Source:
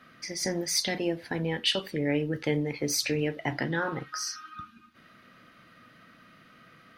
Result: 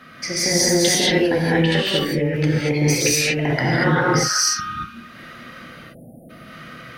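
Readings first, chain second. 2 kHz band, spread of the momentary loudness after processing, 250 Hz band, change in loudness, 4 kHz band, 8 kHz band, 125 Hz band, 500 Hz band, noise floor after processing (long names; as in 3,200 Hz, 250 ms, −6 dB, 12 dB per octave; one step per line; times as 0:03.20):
+12.5 dB, 15 LU, +11.0 dB, +11.5 dB, +10.0 dB, +13.5 dB, +13.5 dB, +11.0 dB, −43 dBFS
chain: time-frequency box erased 0:05.69–0:06.30, 860–8,700 Hz
compressor whose output falls as the input rises −31 dBFS, ratio −0.5
reverb whose tail is shaped and stops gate 260 ms rising, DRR −6.5 dB
level +7 dB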